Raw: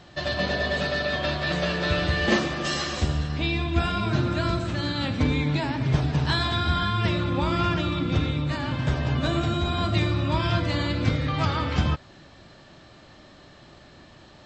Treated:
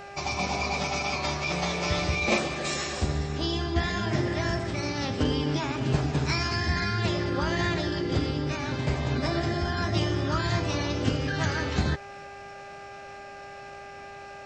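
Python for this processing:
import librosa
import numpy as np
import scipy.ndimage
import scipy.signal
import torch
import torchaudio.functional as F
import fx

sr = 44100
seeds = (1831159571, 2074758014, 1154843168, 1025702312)

y = fx.dmg_buzz(x, sr, base_hz=400.0, harmonics=5, level_db=-40.0, tilt_db=-7, odd_only=False)
y = fx.formant_shift(y, sr, semitones=5)
y = y * 10.0 ** (-3.0 / 20.0)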